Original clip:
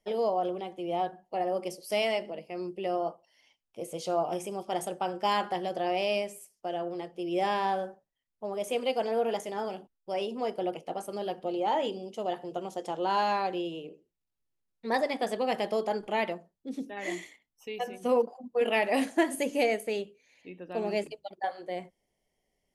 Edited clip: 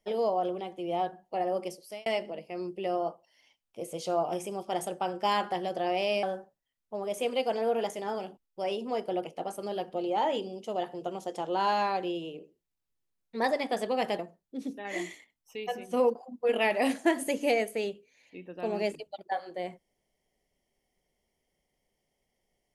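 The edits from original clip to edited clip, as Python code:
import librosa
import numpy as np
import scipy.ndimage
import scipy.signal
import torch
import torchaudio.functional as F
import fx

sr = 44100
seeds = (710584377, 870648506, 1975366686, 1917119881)

y = fx.edit(x, sr, fx.fade_out_span(start_s=1.62, length_s=0.44),
    fx.cut(start_s=6.23, length_s=1.5),
    fx.cut(start_s=15.69, length_s=0.62), tone=tone)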